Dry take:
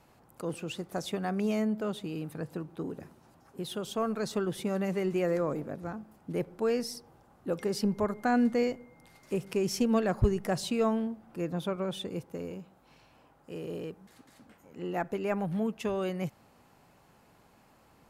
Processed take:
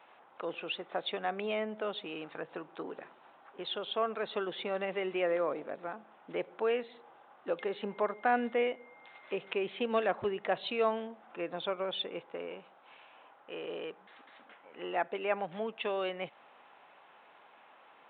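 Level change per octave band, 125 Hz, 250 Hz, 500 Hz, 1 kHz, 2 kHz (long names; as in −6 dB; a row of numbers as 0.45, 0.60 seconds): −17.0, −11.0, −1.5, +1.5, +2.5 decibels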